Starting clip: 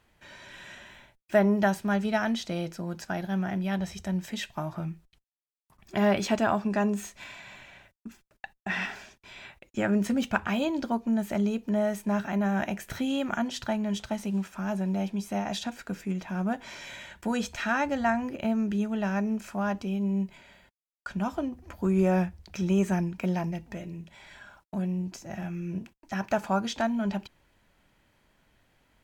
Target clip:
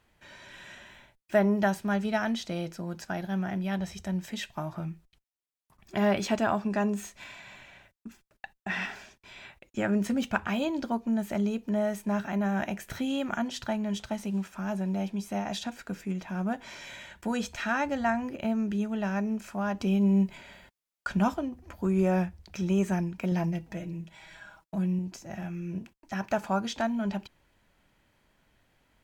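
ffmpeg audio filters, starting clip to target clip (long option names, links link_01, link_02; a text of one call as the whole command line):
ffmpeg -i in.wav -filter_complex "[0:a]asettb=1/sr,asplit=3[link_01][link_02][link_03];[link_01]atrim=end=19.804[link_04];[link_02]atrim=start=19.8:end=21.34,asetpts=PTS-STARTPTS,afade=type=in:duration=0.004:curve=qsin,afade=type=out:start_time=1.536:duration=0.004:curve=qsin,acontrast=61[link_05];[link_03]atrim=start=21.336[link_06];[link_04][link_05]acrossfade=duration=0.004:curve1=hsin:curve2=qsin[link_07];[link_07][link_06]acrossfade=duration=0.004:curve1=qsin:curve2=hsin,asettb=1/sr,asplit=3[link_08][link_09][link_10];[link_08]atrim=end=23.314[link_11];[link_09]atrim=start=23.31:end=24.99,asetpts=PTS-STARTPTS,afade=type=in:duration=0.004:curve=qsin,afade=type=out:start_time=1.676:duration=0.004:curve=qsin,aecho=1:1:6.2:0.62,atrim=end_sample=74088[link_12];[link_10]atrim=start=24.986[link_13];[link_11][link_12]acrossfade=duration=0.004:curve1=hsin:curve2=qsin[link_14];[link_14][link_13]acrossfade=duration=0.004:curve1=qsin:curve2=hsin,volume=-1.5dB" out.wav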